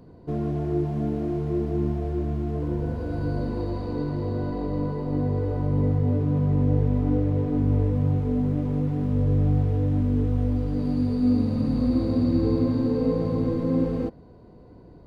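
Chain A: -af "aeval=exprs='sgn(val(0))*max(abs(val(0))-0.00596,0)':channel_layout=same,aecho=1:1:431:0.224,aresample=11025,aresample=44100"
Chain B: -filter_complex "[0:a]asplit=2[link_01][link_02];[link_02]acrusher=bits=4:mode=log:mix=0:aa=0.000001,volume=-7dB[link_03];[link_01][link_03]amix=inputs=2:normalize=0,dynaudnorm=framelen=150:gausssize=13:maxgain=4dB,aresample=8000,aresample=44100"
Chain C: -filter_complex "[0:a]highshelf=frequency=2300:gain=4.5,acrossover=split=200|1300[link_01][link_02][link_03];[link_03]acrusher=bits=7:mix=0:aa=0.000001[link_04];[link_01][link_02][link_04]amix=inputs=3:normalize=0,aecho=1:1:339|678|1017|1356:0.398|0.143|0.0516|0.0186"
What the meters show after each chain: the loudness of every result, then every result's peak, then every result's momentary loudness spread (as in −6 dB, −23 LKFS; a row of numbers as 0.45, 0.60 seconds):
−25.5, −18.0, −24.5 LKFS; −10.5, −4.0, −10.5 dBFS; 7, 6, 7 LU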